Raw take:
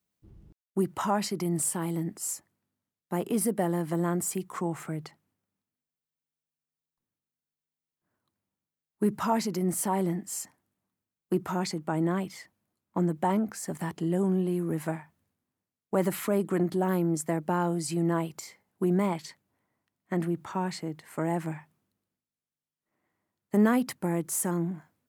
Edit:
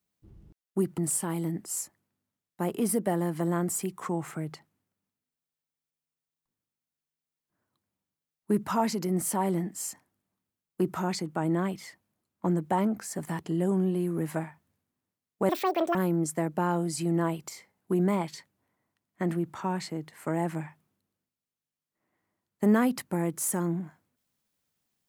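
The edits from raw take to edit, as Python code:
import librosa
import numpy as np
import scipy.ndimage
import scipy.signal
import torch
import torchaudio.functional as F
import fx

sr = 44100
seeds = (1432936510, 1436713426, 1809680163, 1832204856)

y = fx.edit(x, sr, fx.cut(start_s=0.98, length_s=0.52),
    fx.speed_span(start_s=16.01, length_s=0.85, speed=1.85), tone=tone)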